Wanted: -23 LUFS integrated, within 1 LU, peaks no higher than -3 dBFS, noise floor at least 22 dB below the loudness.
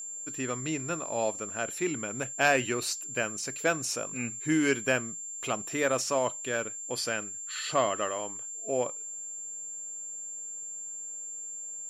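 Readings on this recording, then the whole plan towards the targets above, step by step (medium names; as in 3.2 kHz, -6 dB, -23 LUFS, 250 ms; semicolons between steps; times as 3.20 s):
steady tone 7.3 kHz; tone level -37 dBFS; loudness -31.0 LUFS; peak level -11.5 dBFS; loudness target -23.0 LUFS
-> band-stop 7.3 kHz, Q 30; trim +8 dB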